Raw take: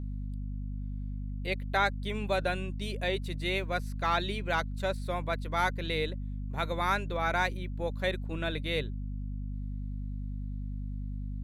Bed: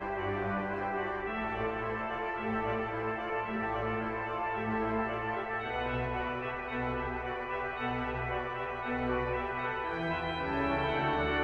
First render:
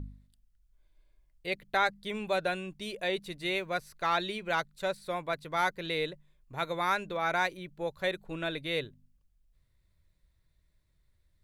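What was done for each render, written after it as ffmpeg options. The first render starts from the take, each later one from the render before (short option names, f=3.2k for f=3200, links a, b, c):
-af "bandreject=f=50:t=h:w=4,bandreject=f=100:t=h:w=4,bandreject=f=150:t=h:w=4,bandreject=f=200:t=h:w=4,bandreject=f=250:t=h:w=4"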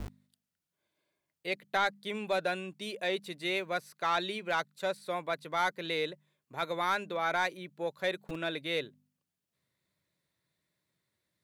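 -filter_complex "[0:a]acrossover=split=140|4800[a][b][c];[a]acrusher=bits=6:mix=0:aa=0.000001[d];[d][b][c]amix=inputs=3:normalize=0,asoftclip=type=tanh:threshold=-18.5dB"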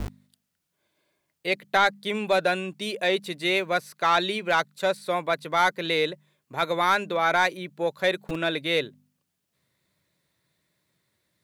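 -af "volume=8.5dB"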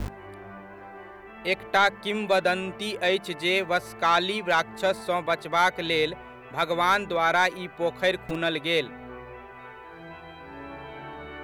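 -filter_complex "[1:a]volume=-9.5dB[a];[0:a][a]amix=inputs=2:normalize=0"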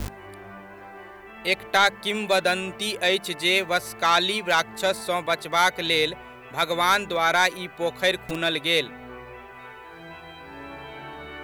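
-af "highshelf=f=3.3k:g=10.5"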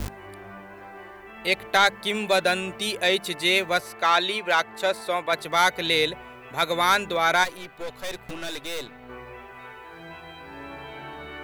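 -filter_complex "[0:a]asettb=1/sr,asplit=3[a][b][c];[a]atrim=end=3.804[d];[b]atrim=start=3.8:end=5.33,asetpts=PTS-STARTPTS,afade=t=in:d=0.004:c=qsin,afade=t=out:st=1.526:d=0.004:c=qsin,bass=f=250:g=-9,treble=f=4k:g=-6[e];[c]atrim=start=5.326[f];[d][e]acrossfade=d=0.004:c1=hsin:c2=qsin[g];[g][f]acrossfade=d=0.004:c1=qsin:c2=hsin,asplit=3[h][i][j];[h]afade=t=out:st=7.43:d=0.02[k];[i]aeval=exprs='(tanh(31.6*val(0)+0.8)-tanh(0.8))/31.6':c=same,afade=t=in:st=7.43:d=0.02,afade=t=out:st=9.08:d=0.02[l];[j]afade=t=in:st=9.08:d=0.02[m];[k][l][m]amix=inputs=3:normalize=0"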